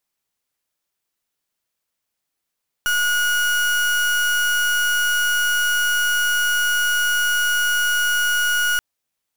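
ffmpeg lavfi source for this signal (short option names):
-f lavfi -i "aevalsrc='0.112*(2*lt(mod(1450*t,1),0.36)-1)':d=5.93:s=44100"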